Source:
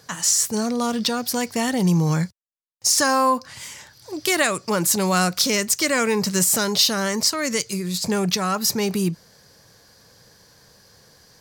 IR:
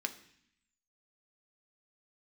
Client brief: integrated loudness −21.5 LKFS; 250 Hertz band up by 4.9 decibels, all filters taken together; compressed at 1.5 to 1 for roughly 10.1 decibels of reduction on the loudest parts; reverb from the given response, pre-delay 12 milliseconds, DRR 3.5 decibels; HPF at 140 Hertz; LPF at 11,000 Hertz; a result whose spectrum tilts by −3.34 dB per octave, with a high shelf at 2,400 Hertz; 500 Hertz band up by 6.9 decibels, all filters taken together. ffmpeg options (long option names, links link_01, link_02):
-filter_complex "[0:a]highpass=140,lowpass=11000,equalizer=frequency=250:width_type=o:gain=6,equalizer=frequency=500:width_type=o:gain=6.5,highshelf=frequency=2400:gain=3.5,acompressor=threshold=-40dB:ratio=1.5,asplit=2[link_01][link_02];[1:a]atrim=start_sample=2205,adelay=12[link_03];[link_02][link_03]afir=irnorm=-1:irlink=0,volume=-5dB[link_04];[link_01][link_04]amix=inputs=2:normalize=0,volume=3.5dB"